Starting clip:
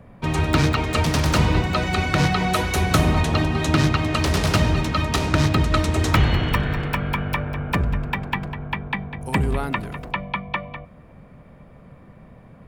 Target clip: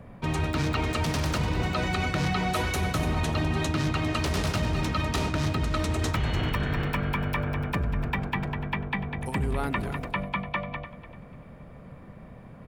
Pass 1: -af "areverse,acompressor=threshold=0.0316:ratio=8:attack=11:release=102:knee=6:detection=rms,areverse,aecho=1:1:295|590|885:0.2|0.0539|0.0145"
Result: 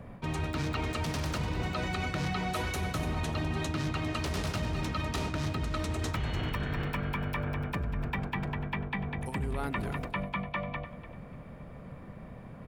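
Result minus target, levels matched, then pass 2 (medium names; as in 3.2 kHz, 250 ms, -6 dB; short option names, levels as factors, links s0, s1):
compression: peak gain reduction +5.5 dB
-af "areverse,acompressor=threshold=0.0668:ratio=8:attack=11:release=102:knee=6:detection=rms,areverse,aecho=1:1:295|590|885:0.2|0.0539|0.0145"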